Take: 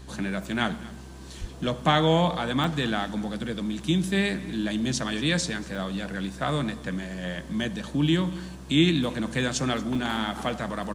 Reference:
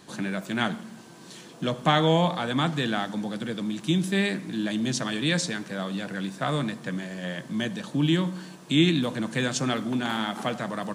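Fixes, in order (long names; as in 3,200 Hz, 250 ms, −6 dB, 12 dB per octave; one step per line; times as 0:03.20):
hum removal 65.4 Hz, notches 6
0:01.40–0:01.52: high-pass filter 140 Hz 24 dB per octave
repair the gap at 0:02.64/0:05.75/0:09.95, 3.8 ms
echo removal 234 ms −20.5 dB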